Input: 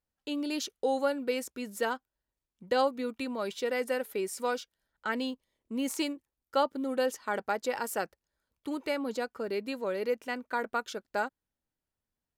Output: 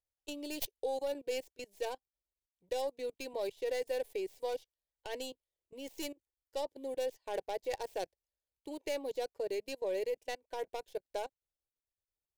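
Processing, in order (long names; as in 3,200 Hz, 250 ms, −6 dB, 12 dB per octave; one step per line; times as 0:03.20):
stylus tracing distortion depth 0.2 ms
output level in coarse steps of 18 dB
phaser with its sweep stopped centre 540 Hz, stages 4
expander for the loud parts 1.5 to 1, over −55 dBFS
level +4 dB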